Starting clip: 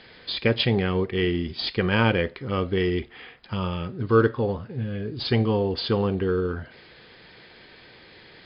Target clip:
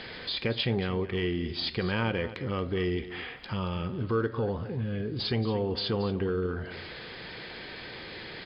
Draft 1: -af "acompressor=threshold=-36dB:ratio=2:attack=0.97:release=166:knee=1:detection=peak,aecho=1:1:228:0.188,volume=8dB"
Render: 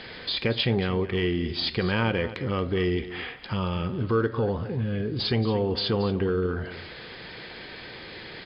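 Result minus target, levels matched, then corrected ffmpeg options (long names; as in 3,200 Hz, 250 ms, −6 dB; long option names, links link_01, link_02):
downward compressor: peak gain reduction −4 dB
-af "acompressor=threshold=-44dB:ratio=2:attack=0.97:release=166:knee=1:detection=peak,aecho=1:1:228:0.188,volume=8dB"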